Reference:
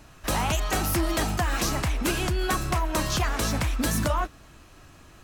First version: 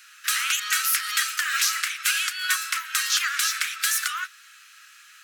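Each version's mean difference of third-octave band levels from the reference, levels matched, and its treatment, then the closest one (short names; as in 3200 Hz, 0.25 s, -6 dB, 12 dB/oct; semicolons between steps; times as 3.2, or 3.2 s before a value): 20.0 dB: steep high-pass 1300 Hz 72 dB/oct; gain +7.5 dB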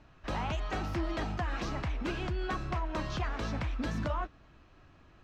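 5.5 dB: air absorption 200 m; gain -7.5 dB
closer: second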